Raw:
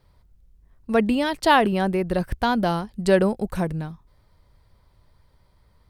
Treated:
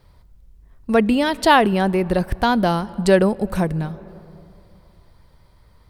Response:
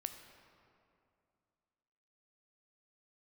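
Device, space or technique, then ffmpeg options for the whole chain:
ducked reverb: -filter_complex "[0:a]asplit=3[s0][s1][s2];[1:a]atrim=start_sample=2205[s3];[s1][s3]afir=irnorm=-1:irlink=0[s4];[s2]apad=whole_len=260082[s5];[s4][s5]sidechaincompress=threshold=0.0501:ratio=8:attack=6.7:release=506,volume=0.794[s6];[s0][s6]amix=inputs=2:normalize=0,volume=1.33"

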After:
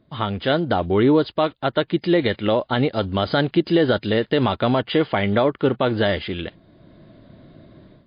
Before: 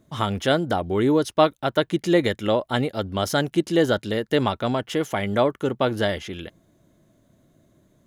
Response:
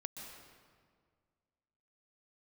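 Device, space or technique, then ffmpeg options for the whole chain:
low-bitrate web radio: -af "dynaudnorm=f=440:g=3:m=5.01,alimiter=limit=0.447:level=0:latency=1:release=86" -ar 11025 -c:a libmp3lame -b:a 32k

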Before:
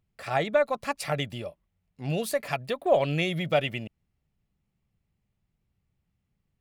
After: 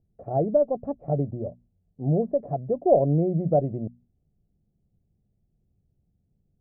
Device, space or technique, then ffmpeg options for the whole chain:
under water: -af "lowpass=f=500:w=0.5412,lowpass=f=500:w=1.3066,equalizer=f=720:t=o:w=0.33:g=9,bandreject=f=60:t=h:w=6,bandreject=f=120:t=h:w=6,bandreject=f=180:t=h:w=6,bandreject=f=240:t=h:w=6,volume=2.24"

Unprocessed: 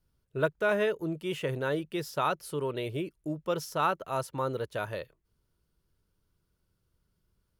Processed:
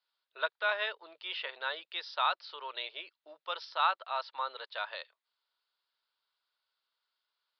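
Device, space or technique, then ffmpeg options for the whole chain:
musical greeting card: -af "aresample=11025,aresample=44100,highpass=f=770:w=0.5412,highpass=f=770:w=1.3066,equalizer=f=3800:t=o:w=0.49:g=8.5"

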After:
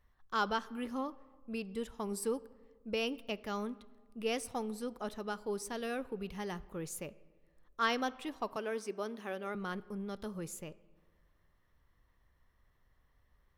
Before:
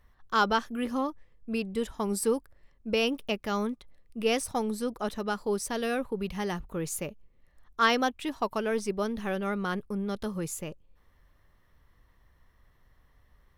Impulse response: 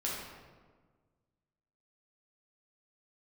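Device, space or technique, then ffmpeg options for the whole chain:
filtered reverb send: -filter_complex "[0:a]asettb=1/sr,asplit=3[s0][s1][s2];[s0]atrim=end=8.564[s3];[s1]atrim=start=8.56:end=9.55,asetpts=PTS-STARTPTS,afade=t=in:d=0.004:c=qsin,afade=t=out:st=0.986:d=0.004:c=qsin,highpass=f=230:w=0.5412,highpass=f=230:w=1.3066[s4];[s2]atrim=start=9.546[s5];[s3][s4]acrossfade=d=0.004:c1=hsin:c2=qsin[s6];[s6][s5]acrossfade=d=0.004:c1=qsin:c2=hsin,asplit=2[s7][s8];[s8]highpass=200,lowpass=6100[s9];[1:a]atrim=start_sample=2205[s10];[s9][s10]afir=irnorm=-1:irlink=0,volume=0.0944[s11];[s7][s11]amix=inputs=2:normalize=0,volume=0.376"

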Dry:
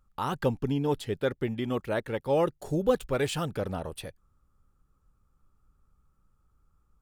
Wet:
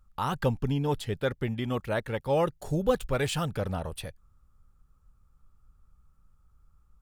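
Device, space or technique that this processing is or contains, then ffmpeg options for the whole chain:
low shelf boost with a cut just above: -af "lowshelf=f=100:g=6,equalizer=f=340:t=o:w=1.1:g=-5.5,volume=1.19"

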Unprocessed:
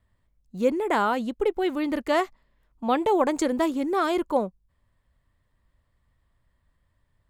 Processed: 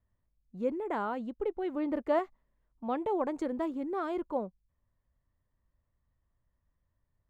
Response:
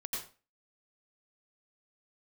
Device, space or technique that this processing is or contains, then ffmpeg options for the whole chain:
through cloth: -filter_complex "[0:a]highshelf=f=2700:g=-16.5,asettb=1/sr,asplit=3[s0][s1][s2];[s0]atrim=end=1.744[s3];[s1]atrim=start=1.74:end=2.19,asetpts=PTS-STARTPTS,afade=t=in:d=0.004:c=qsin,afade=t=out:st=0.446:d=0.004:c=qsin,equalizer=f=590:w=0.65:g=6[s4];[s2]atrim=start=2.186[s5];[s3][s4]acrossfade=d=0.004:c1=hsin:c2=qsin[s6];[s6][s5]acrossfade=d=0.004:c1=qsin:c2=hsin,volume=0.376"

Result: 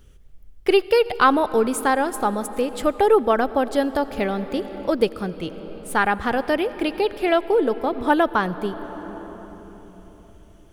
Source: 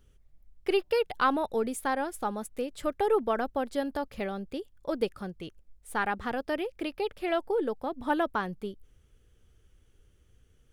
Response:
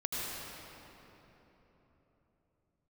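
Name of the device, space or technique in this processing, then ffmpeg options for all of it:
ducked reverb: -filter_complex "[0:a]asplit=3[s0][s1][s2];[1:a]atrim=start_sample=2205[s3];[s1][s3]afir=irnorm=-1:irlink=0[s4];[s2]apad=whole_len=473141[s5];[s4][s5]sidechaincompress=threshold=0.0282:ratio=8:attack=12:release=1050,volume=0.266[s6];[s0][s6]amix=inputs=2:normalize=0,volume=2.82"

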